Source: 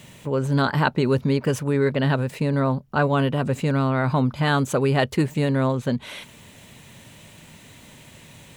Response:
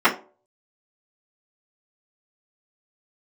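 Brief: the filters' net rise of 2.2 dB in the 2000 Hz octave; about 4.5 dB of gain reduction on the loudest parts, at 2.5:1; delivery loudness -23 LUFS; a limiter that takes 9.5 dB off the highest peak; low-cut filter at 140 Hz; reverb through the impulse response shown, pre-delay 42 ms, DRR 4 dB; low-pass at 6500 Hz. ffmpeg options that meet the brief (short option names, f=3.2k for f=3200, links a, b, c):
-filter_complex "[0:a]highpass=140,lowpass=6.5k,equalizer=f=2k:t=o:g=3,acompressor=threshold=-22dB:ratio=2.5,alimiter=limit=-17.5dB:level=0:latency=1,asplit=2[a][b];[1:a]atrim=start_sample=2205,adelay=42[c];[b][c]afir=irnorm=-1:irlink=0,volume=-26dB[d];[a][d]amix=inputs=2:normalize=0,volume=5dB"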